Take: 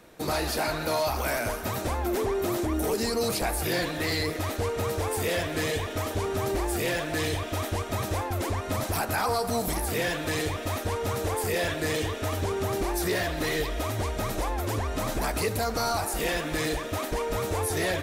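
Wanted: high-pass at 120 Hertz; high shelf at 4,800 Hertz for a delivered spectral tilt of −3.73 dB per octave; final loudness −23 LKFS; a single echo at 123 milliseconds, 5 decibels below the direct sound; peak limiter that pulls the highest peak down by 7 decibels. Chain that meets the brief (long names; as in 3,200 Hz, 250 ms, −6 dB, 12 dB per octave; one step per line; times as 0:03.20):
high-pass filter 120 Hz
high-shelf EQ 4,800 Hz +3 dB
brickwall limiter −23 dBFS
single-tap delay 123 ms −5 dB
level +7.5 dB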